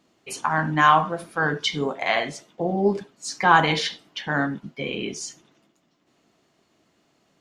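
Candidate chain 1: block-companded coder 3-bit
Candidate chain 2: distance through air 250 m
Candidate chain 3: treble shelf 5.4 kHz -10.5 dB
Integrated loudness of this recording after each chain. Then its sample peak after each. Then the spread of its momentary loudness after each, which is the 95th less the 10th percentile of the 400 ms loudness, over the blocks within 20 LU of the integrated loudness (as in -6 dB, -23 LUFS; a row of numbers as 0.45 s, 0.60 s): -22.0 LUFS, -24.5 LUFS, -23.5 LUFS; -2.5 dBFS, -3.5 dBFS, -3.0 dBFS; 15 LU, 14 LU, 16 LU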